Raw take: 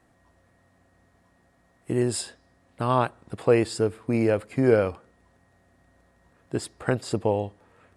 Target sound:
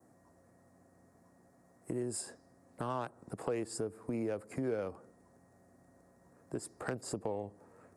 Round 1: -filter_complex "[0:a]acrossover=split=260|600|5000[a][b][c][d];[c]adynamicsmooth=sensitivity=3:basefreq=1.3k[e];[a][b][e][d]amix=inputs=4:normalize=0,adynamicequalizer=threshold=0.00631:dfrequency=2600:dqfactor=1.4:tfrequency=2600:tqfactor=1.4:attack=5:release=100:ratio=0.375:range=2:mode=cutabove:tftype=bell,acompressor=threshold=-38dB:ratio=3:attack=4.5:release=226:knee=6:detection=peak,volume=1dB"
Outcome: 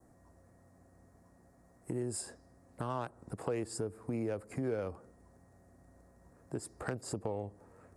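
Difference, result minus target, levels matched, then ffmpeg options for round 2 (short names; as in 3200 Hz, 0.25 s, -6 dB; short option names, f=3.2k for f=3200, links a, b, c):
125 Hz band +3.5 dB
-filter_complex "[0:a]acrossover=split=260|600|5000[a][b][c][d];[c]adynamicsmooth=sensitivity=3:basefreq=1.3k[e];[a][b][e][d]amix=inputs=4:normalize=0,adynamicequalizer=threshold=0.00631:dfrequency=2600:dqfactor=1.4:tfrequency=2600:tqfactor=1.4:attack=5:release=100:ratio=0.375:range=2:mode=cutabove:tftype=bell,highpass=130,acompressor=threshold=-38dB:ratio=3:attack=4.5:release=226:knee=6:detection=peak,volume=1dB"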